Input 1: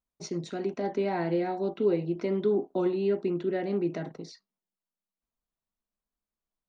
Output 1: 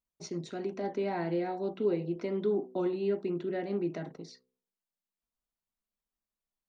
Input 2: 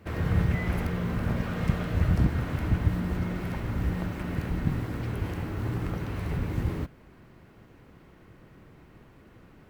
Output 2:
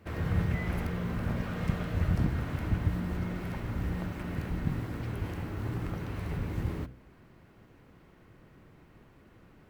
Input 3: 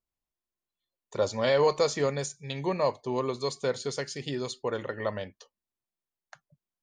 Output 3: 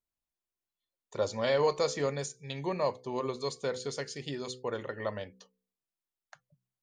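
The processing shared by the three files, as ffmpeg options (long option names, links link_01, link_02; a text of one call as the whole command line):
ffmpeg -i in.wav -af "bandreject=frequency=63.25:width_type=h:width=4,bandreject=frequency=126.5:width_type=h:width=4,bandreject=frequency=189.75:width_type=h:width=4,bandreject=frequency=253:width_type=h:width=4,bandreject=frequency=316.25:width_type=h:width=4,bandreject=frequency=379.5:width_type=h:width=4,bandreject=frequency=442.75:width_type=h:width=4,bandreject=frequency=506:width_type=h:width=4,volume=-3.5dB" out.wav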